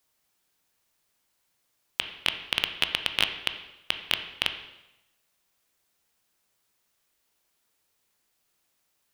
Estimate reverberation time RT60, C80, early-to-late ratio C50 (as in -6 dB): 0.90 s, 11.5 dB, 9.5 dB